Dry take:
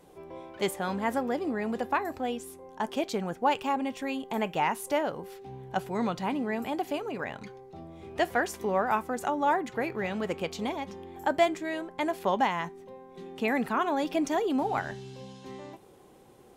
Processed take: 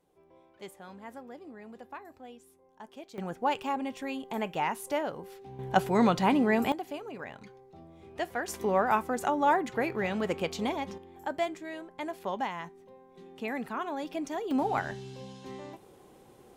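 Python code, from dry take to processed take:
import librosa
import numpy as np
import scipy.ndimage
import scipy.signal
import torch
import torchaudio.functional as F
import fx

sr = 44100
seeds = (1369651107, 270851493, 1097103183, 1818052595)

y = fx.gain(x, sr, db=fx.steps((0.0, -16.0), (3.18, -3.0), (5.59, 6.0), (6.72, -6.5), (8.48, 1.0), (10.98, -7.0), (14.51, 0.0)))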